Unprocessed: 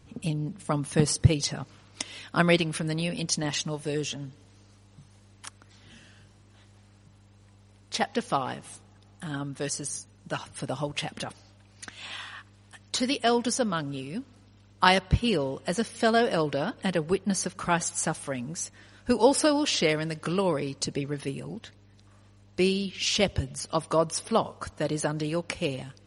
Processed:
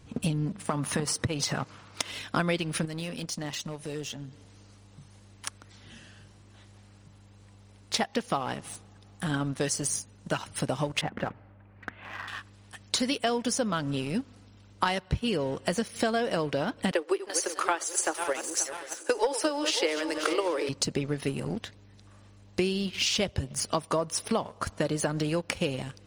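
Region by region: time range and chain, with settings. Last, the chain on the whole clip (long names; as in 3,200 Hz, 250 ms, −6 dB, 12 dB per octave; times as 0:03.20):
0:00.58–0:02.11: parametric band 1,200 Hz +6.5 dB 1.6 octaves + downward compressor 3 to 1, threshold −28 dBFS + high-pass filter 61 Hz
0:02.85–0:05.46: downward compressor 2 to 1, threshold −45 dBFS + hard clipping −34 dBFS
0:11.01–0:12.28: low-pass filter 2,000 Hz 24 dB per octave + mains-hum notches 60/120/180/240 Hz
0:16.91–0:20.69: feedback delay that plays each chunk backwards 266 ms, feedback 58%, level −12 dB + Chebyshev high-pass filter 310 Hz, order 6 + transient designer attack +8 dB, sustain +4 dB
whole clip: leveller curve on the samples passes 1; downward compressor 6 to 1, threshold −29 dBFS; level +4 dB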